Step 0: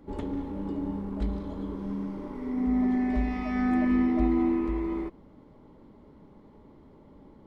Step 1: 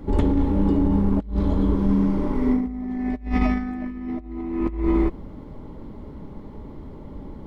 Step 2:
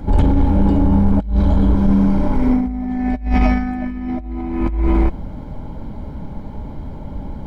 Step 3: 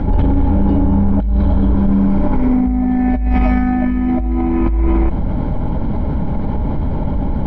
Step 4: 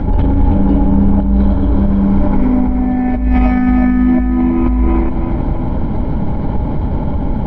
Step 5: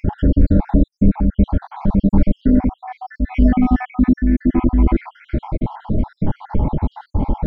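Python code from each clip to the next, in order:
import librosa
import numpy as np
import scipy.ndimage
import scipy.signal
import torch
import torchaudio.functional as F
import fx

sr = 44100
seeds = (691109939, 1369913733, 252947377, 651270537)

y1 = fx.low_shelf(x, sr, hz=110.0, db=11.5)
y1 = fx.over_compress(y1, sr, threshold_db=-28.0, ratio=-0.5)
y1 = y1 * 10.0 ** (7.0 / 20.0)
y2 = y1 + 0.52 * np.pad(y1, (int(1.3 * sr / 1000.0), 0))[:len(y1)]
y2 = 10.0 ** (-13.0 / 20.0) * np.tanh(y2 / 10.0 ** (-13.0 / 20.0))
y2 = y2 * 10.0 ** (7.0 / 20.0)
y3 = fx.air_absorb(y2, sr, metres=220.0)
y3 = fx.env_flatten(y3, sr, amount_pct=70)
y3 = y3 * 10.0 ** (-1.5 / 20.0)
y4 = fx.echo_feedback(y3, sr, ms=323, feedback_pct=47, wet_db=-7.0)
y4 = y4 * 10.0 ** (1.0 / 20.0)
y5 = fx.spec_dropout(y4, sr, seeds[0], share_pct=69)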